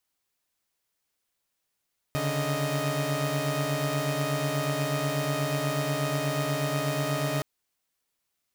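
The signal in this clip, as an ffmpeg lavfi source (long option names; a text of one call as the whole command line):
ffmpeg -f lavfi -i "aevalsrc='0.0398*((2*mod(138.59*t,1)-1)+(2*mod(146.83*t,1)-1)+(2*mod(622.25*t,1)-1))':duration=5.27:sample_rate=44100" out.wav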